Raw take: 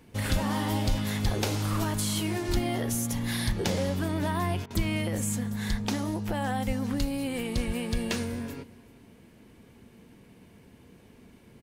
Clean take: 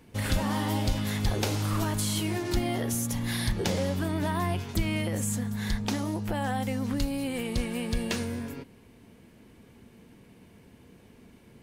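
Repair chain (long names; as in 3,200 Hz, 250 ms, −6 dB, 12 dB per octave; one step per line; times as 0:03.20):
high-pass at the plosives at 0:00.89/0:02.47/0:06.66/0:07.66
repair the gap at 0:04.66, 43 ms
echo removal 381 ms −21 dB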